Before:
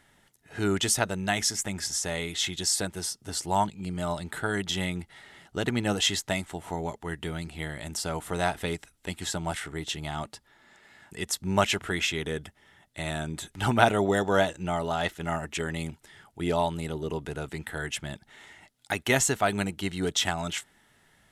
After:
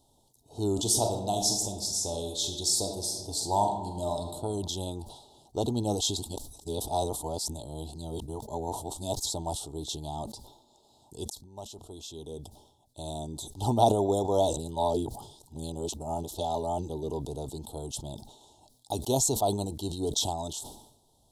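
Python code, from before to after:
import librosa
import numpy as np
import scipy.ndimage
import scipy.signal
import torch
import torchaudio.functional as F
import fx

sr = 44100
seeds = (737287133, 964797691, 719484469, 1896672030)

y = fx.reverb_throw(x, sr, start_s=0.72, length_s=3.56, rt60_s=1.2, drr_db=4.0)
y = fx.dynamic_eq(y, sr, hz=1100.0, q=0.71, threshold_db=-51.0, ratio=4.0, max_db=8, at=(4.86, 5.62))
y = fx.edit(y, sr, fx.reverse_span(start_s=6.17, length_s=3.09),
    fx.fade_in_span(start_s=11.3, length_s=2.21),
    fx.reverse_span(start_s=14.57, length_s=2.32), tone=tone)
y = scipy.signal.sosfilt(scipy.signal.ellip(3, 1.0, 60, [900.0, 3800.0], 'bandstop', fs=sr, output='sos'), y)
y = fx.peak_eq(y, sr, hz=180.0, db=-11.0, octaves=0.38)
y = fx.sustainer(y, sr, db_per_s=72.0)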